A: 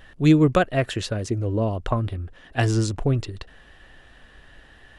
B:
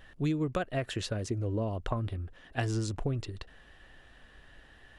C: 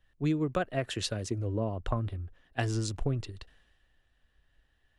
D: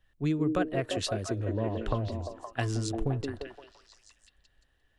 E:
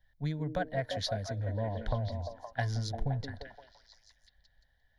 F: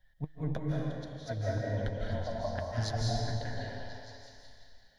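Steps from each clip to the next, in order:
compression 6:1, threshold -21 dBFS, peak gain reduction 10.5 dB; trim -6 dB
three bands expanded up and down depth 70%
repeats whose band climbs or falls 173 ms, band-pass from 320 Hz, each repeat 0.7 oct, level -0.5 dB
static phaser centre 1.8 kHz, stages 8
inverted gate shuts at -25 dBFS, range -41 dB; flange 0.9 Hz, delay 5.3 ms, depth 2.5 ms, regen +51%; reverberation RT60 2.2 s, pre-delay 125 ms, DRR -4.5 dB; trim +5.5 dB

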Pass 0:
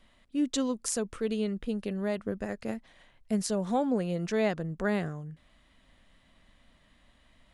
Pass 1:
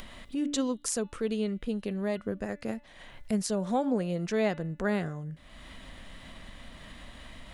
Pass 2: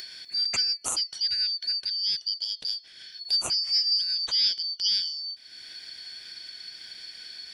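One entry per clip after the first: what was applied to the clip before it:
de-hum 290.2 Hz, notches 14; upward compressor, threshold -31 dBFS
four frequency bands reordered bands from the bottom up 4321; trim +3 dB

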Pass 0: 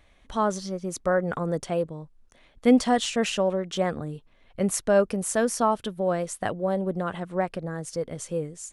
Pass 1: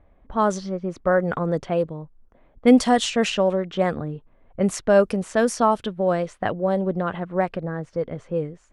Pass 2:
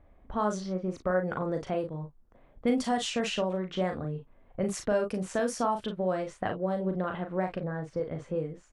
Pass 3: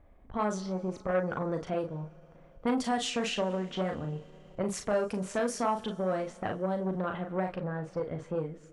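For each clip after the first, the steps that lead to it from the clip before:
level-controlled noise filter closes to 880 Hz, open at -18 dBFS; trim +4 dB
compression 2:1, threshold -28 dBFS, peak gain reduction 10.5 dB; on a send: early reflections 38 ms -6 dB, 53 ms -15 dB; on the sum: trim -3 dB
reverberation RT60 3.9 s, pre-delay 13 ms, DRR 19 dB; transformer saturation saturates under 760 Hz

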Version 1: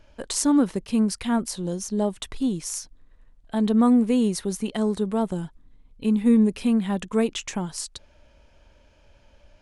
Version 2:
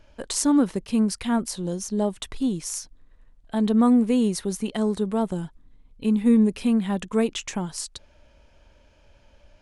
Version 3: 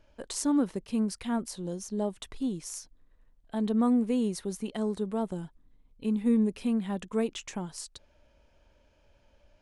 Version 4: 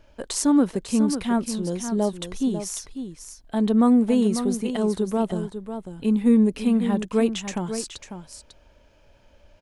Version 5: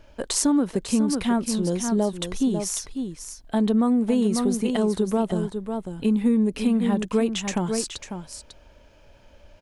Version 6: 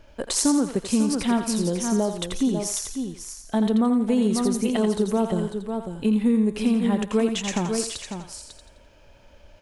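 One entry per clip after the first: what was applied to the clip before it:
no audible change
peaking EQ 450 Hz +2.5 dB 2.3 oct; trim -8.5 dB
delay 547 ms -9.5 dB; trim +7.5 dB
compression 6:1, threshold -21 dBFS, peak gain reduction 8 dB; trim +3.5 dB
thinning echo 85 ms, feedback 42%, high-pass 680 Hz, level -6 dB

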